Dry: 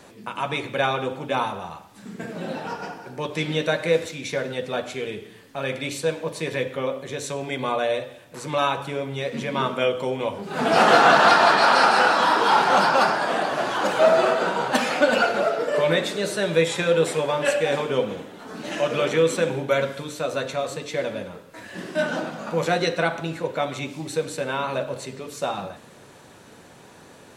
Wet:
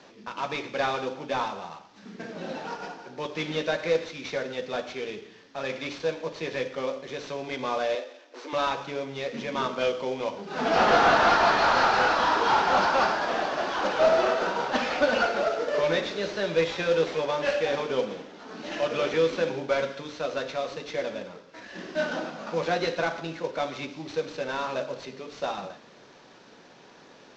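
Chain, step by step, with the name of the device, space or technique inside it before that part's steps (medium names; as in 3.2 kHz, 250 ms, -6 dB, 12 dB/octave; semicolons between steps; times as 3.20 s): early wireless headset (high-pass 190 Hz 12 dB/octave; CVSD coder 32 kbps); 7.95–8.53 s: elliptic high-pass 270 Hz; trim -3.5 dB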